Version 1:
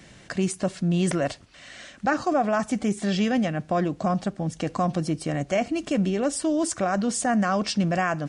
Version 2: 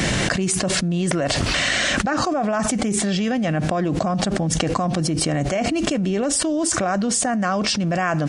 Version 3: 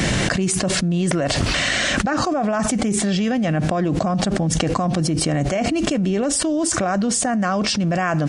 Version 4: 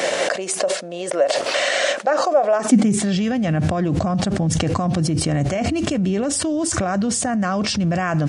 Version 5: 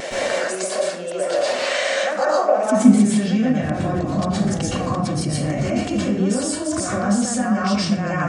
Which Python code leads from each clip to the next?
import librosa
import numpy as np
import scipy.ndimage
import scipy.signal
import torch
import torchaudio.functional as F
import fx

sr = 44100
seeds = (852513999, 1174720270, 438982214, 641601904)

y1 = fx.env_flatten(x, sr, amount_pct=100)
y1 = F.gain(torch.from_numpy(y1), -1.5).numpy()
y2 = fx.low_shelf(y1, sr, hz=330.0, db=2.5)
y3 = fx.filter_sweep_highpass(y2, sr, from_hz=550.0, to_hz=85.0, start_s=2.52, end_s=3.04, q=4.0)
y3 = fx.end_taper(y3, sr, db_per_s=150.0)
y3 = F.gain(torch.from_numpy(y3), -1.5).numpy()
y4 = fx.wow_flutter(y3, sr, seeds[0], rate_hz=2.1, depth_cents=35.0)
y4 = fx.rev_plate(y4, sr, seeds[1], rt60_s=0.74, hf_ratio=0.5, predelay_ms=105, drr_db=-7.0)
y4 = F.gain(torch.from_numpy(y4), -8.5).numpy()